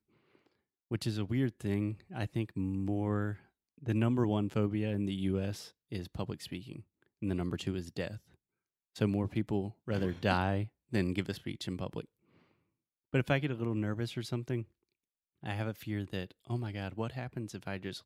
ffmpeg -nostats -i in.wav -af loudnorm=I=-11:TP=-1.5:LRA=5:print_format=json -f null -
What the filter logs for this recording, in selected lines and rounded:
"input_i" : "-35.9",
"input_tp" : "-12.2",
"input_lra" : "5.7",
"input_thresh" : "-46.2",